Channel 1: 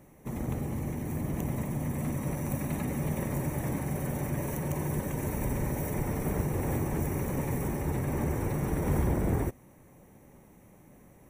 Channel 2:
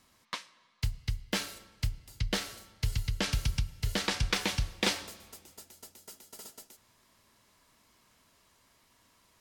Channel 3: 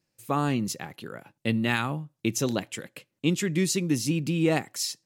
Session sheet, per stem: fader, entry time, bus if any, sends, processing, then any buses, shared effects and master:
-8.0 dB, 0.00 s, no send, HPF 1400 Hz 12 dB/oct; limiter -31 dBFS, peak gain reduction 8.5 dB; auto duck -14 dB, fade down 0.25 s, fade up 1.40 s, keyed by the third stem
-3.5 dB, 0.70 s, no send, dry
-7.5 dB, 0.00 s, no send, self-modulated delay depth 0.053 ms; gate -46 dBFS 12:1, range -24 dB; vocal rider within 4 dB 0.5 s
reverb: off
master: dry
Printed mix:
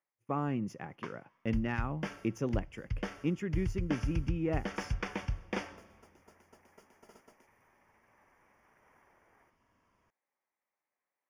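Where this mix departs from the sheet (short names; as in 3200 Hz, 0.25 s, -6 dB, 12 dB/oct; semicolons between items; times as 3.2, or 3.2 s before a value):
stem 1 -8.0 dB -> -19.0 dB; master: extra running mean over 11 samples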